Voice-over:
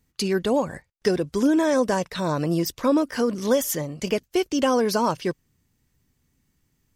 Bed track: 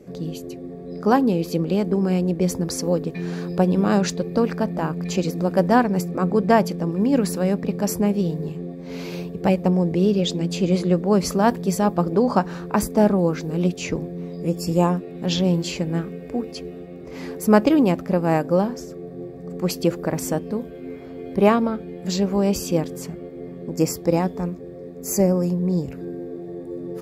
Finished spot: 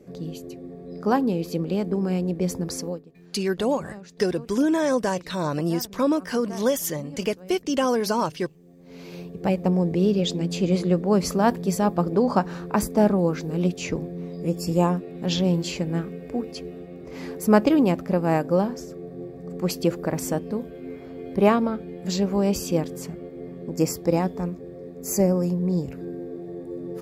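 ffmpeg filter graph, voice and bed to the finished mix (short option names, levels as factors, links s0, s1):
-filter_complex "[0:a]adelay=3150,volume=0.841[s0];[1:a]volume=6.68,afade=t=out:st=2.78:d=0.24:silence=0.11885,afade=t=in:st=8.63:d=1.14:silence=0.0944061[s1];[s0][s1]amix=inputs=2:normalize=0"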